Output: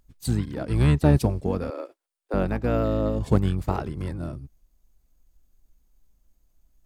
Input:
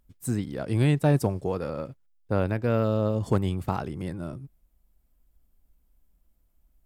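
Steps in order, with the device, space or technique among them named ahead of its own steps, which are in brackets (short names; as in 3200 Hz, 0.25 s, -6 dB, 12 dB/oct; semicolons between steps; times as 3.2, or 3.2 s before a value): octave pedal (harmoniser -12 st -2 dB); 1.7–2.34 elliptic high-pass 320 Hz, stop band 40 dB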